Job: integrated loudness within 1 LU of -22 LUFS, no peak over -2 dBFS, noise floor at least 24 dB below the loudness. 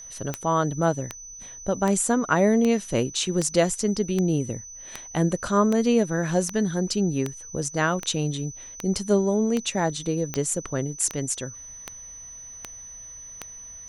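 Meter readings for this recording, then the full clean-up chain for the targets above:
clicks 18; steady tone 6000 Hz; tone level -39 dBFS; loudness -24.5 LUFS; peak -6.5 dBFS; loudness target -22.0 LUFS
-> de-click; notch 6000 Hz, Q 30; gain +2.5 dB

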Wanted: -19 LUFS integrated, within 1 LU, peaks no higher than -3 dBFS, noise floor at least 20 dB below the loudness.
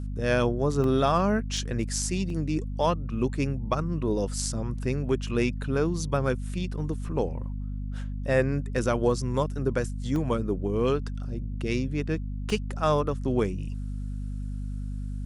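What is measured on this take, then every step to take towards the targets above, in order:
dropouts 5; longest dropout 1.8 ms; hum 50 Hz; harmonics up to 250 Hz; hum level -30 dBFS; loudness -28.5 LUFS; peak -9.0 dBFS; loudness target -19.0 LUFS
-> interpolate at 0.84/1.57/2.3/10.16/12.5, 1.8 ms; de-hum 50 Hz, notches 5; gain +9.5 dB; limiter -3 dBFS

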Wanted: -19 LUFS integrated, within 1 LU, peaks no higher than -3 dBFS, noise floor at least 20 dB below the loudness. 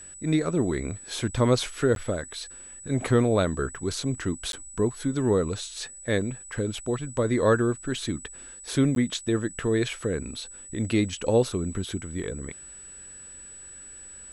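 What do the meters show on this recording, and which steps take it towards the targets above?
dropouts 3; longest dropout 12 ms; steady tone 7900 Hz; tone level -42 dBFS; loudness -27.0 LUFS; peak -8.5 dBFS; loudness target -19.0 LUFS
-> interpolate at 1.95/4.52/8.95, 12 ms; notch 7900 Hz, Q 30; gain +8 dB; limiter -3 dBFS

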